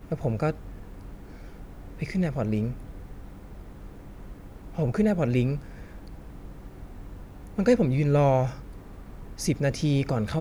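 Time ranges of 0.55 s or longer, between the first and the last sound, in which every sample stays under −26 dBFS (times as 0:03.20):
0:00.51–0:02.02
0:02.71–0:04.78
0:05.56–0:07.58
0:08.49–0:09.40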